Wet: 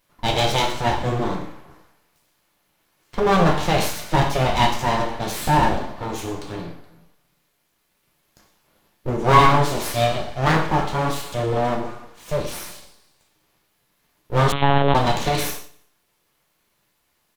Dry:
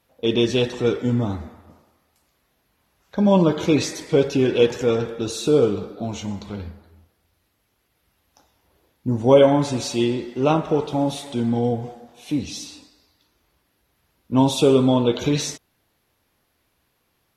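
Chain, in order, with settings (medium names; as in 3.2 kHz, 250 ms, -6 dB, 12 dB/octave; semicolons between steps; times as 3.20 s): full-wave rectifier; on a send: feedback delay 88 ms, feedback 47%, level -20 dB; on the sum: gated-style reverb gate 170 ms falling, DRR 0.5 dB; 14.52–14.95 s: monotone LPC vocoder at 8 kHz 140 Hz; trim +2 dB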